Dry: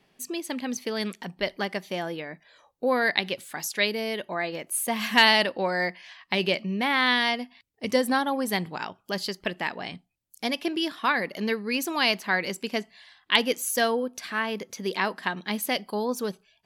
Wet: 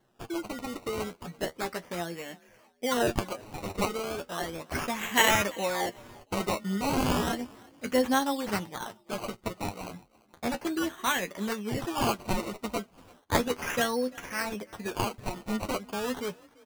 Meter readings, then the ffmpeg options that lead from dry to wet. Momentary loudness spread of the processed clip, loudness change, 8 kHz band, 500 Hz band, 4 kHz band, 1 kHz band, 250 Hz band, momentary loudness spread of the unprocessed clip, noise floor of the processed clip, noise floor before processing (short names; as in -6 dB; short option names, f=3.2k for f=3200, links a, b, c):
11 LU, -4.5 dB, -1.5 dB, -3.0 dB, -8.0 dB, -2.5 dB, -2.0 dB, 11 LU, -63 dBFS, -68 dBFS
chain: -filter_complex "[0:a]acrusher=samples=18:mix=1:aa=0.000001:lfo=1:lforange=18:lforate=0.34,flanger=delay=8.5:depth=4.1:regen=34:speed=0.33:shape=sinusoidal,asplit=3[a][b][c];[b]adelay=340,afreqshift=37,volume=-24dB[d];[c]adelay=680,afreqshift=74,volume=-34.2dB[e];[a][d][e]amix=inputs=3:normalize=0"